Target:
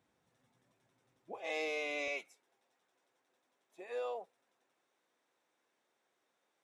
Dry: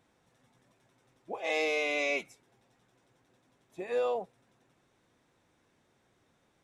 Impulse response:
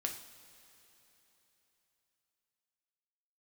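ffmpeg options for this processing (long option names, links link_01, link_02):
-af "asetnsamples=nb_out_samples=441:pad=0,asendcmd='2.08 highpass f 430',highpass=62,volume=-7.5dB"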